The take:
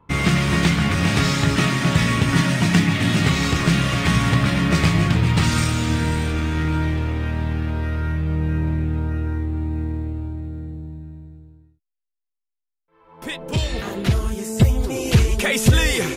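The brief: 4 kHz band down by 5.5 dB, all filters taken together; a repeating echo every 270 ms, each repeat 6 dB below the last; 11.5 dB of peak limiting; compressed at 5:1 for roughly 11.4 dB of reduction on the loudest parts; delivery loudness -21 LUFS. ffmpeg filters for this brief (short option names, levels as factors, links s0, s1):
-af "equalizer=f=4000:t=o:g=-7.5,acompressor=threshold=0.0794:ratio=5,alimiter=limit=0.0668:level=0:latency=1,aecho=1:1:270|540|810|1080|1350|1620:0.501|0.251|0.125|0.0626|0.0313|0.0157,volume=2.99"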